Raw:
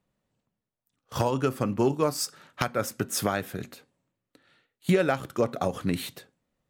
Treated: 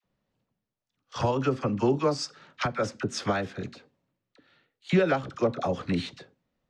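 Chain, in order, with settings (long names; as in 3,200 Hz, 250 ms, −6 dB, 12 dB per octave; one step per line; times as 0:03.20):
low-pass filter 5,900 Hz 24 dB per octave
all-pass dispersion lows, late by 43 ms, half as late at 830 Hz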